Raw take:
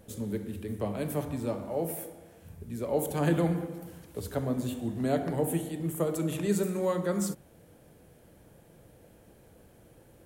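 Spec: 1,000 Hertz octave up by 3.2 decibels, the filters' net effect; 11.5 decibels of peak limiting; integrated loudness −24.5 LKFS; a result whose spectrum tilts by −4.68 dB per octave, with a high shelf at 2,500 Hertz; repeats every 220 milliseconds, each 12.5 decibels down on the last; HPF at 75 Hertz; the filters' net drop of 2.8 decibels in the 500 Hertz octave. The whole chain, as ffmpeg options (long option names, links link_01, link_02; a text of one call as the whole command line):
ffmpeg -i in.wav -af "highpass=75,equalizer=frequency=500:width_type=o:gain=-5,equalizer=frequency=1000:width_type=o:gain=5.5,highshelf=frequency=2500:gain=6,alimiter=level_in=1.5dB:limit=-24dB:level=0:latency=1,volume=-1.5dB,aecho=1:1:220|440|660:0.237|0.0569|0.0137,volume=10.5dB" out.wav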